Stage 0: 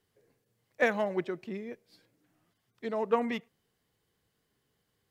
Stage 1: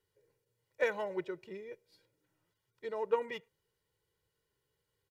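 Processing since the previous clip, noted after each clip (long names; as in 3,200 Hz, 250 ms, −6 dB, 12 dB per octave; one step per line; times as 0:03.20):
comb filter 2.1 ms, depth 75%
level −7.5 dB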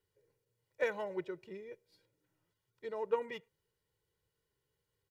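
low-shelf EQ 330 Hz +3 dB
level −3 dB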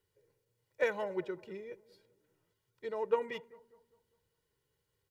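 bucket-brigade delay 200 ms, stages 2,048, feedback 43%, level −20 dB
level +2.5 dB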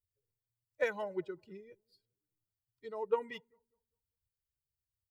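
spectral dynamics exaggerated over time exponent 1.5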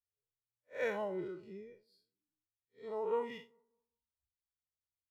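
spectrum smeared in time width 115 ms
noise reduction from a noise print of the clip's start 15 dB
level +4 dB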